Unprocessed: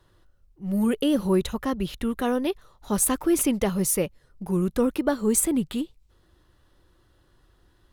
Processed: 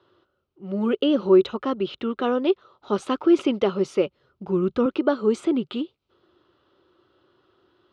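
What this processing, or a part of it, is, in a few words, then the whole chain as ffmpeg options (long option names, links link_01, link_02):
kitchen radio: -filter_complex "[0:a]highpass=55,highpass=160,equalizer=frequency=170:width_type=q:width=4:gain=-6,equalizer=frequency=380:width_type=q:width=4:gain=9,equalizer=frequency=570:width_type=q:width=4:gain=3,equalizer=frequency=1300:width_type=q:width=4:gain=8,equalizer=frequency=1800:width_type=q:width=4:gain=-7,equalizer=frequency=3000:width_type=q:width=4:gain=4,lowpass=frequency=4400:width=0.5412,lowpass=frequency=4400:width=1.3066,asettb=1/sr,asplit=3[link_01][link_02][link_03];[link_01]atrim=end=3.884[link_04];[link_02]atrim=start=3.88:end=4.86,asetpts=PTS-STARTPTS,afade=type=in:duration=0.004:curve=qsin,afade=type=out:start_time=0.976:duration=0.004:curve=qsin,asubboost=boost=11.5:cutoff=170[link_05];[link_03]atrim=start=4.856[link_06];[link_04][link_05]acrossfade=duration=0.004:curve1=hsin:curve2=qsin[link_07];[link_07][link_06]acrossfade=duration=0.004:curve1=qsin:curve2=hsin"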